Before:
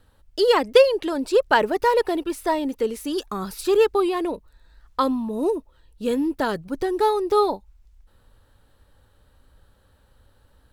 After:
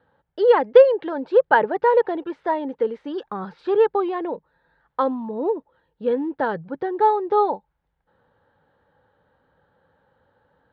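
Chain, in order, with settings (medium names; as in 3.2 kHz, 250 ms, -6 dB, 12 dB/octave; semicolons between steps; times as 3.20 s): cabinet simulation 140–3100 Hz, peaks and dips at 160 Hz +8 dB, 500 Hz +8 dB, 840 Hz +9 dB, 1.6 kHz +6 dB, 2.6 kHz -7 dB; trim -4 dB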